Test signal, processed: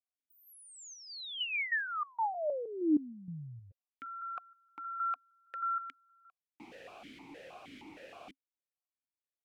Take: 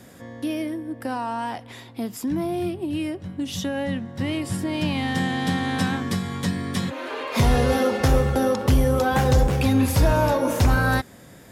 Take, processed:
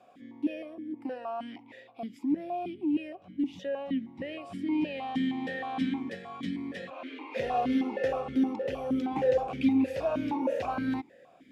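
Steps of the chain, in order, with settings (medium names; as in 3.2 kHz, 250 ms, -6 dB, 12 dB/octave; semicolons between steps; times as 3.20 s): stepped vowel filter 6.4 Hz; trim +2 dB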